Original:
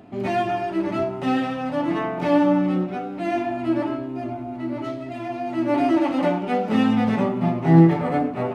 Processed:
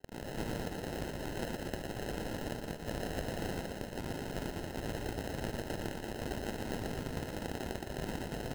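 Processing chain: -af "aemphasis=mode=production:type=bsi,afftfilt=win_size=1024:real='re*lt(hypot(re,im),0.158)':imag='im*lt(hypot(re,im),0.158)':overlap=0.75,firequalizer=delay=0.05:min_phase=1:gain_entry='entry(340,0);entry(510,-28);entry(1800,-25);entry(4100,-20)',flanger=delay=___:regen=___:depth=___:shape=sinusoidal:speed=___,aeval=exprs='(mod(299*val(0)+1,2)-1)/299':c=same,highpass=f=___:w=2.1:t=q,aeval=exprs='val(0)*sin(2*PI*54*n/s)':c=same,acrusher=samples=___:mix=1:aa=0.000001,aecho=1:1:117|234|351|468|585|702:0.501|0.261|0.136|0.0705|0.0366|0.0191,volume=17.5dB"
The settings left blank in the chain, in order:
5.1, 89, 7.3, 1, 2.3k, 38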